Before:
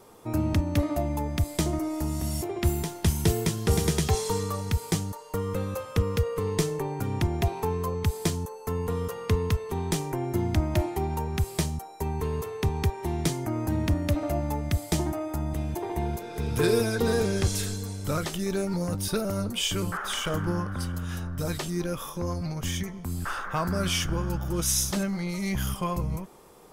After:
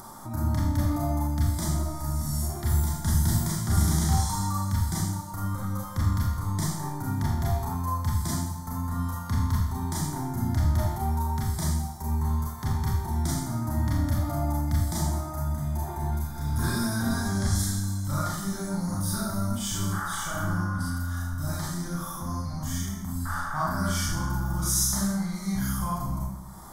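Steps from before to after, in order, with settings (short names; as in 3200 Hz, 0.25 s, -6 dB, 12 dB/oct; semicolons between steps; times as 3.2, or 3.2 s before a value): Schroeder reverb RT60 0.81 s, combs from 27 ms, DRR -6.5 dB; upward compressor, threshold -25 dBFS; fixed phaser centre 1100 Hz, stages 4; gain -4.5 dB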